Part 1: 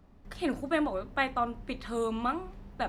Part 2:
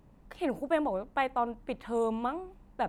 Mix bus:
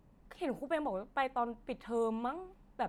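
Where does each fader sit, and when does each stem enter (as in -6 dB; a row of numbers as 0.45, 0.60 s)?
-17.5, -5.0 dB; 0.00, 0.00 s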